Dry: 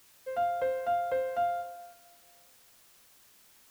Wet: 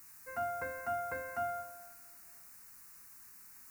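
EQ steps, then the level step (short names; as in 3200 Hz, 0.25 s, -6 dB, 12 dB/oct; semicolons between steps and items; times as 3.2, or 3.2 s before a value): high shelf 7600 Hz +4 dB; fixed phaser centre 1400 Hz, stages 4; +3.0 dB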